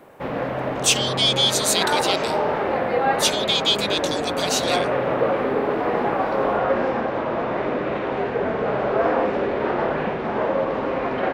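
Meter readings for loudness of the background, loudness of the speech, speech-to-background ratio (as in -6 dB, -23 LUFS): -23.0 LUFS, -21.5 LUFS, 1.5 dB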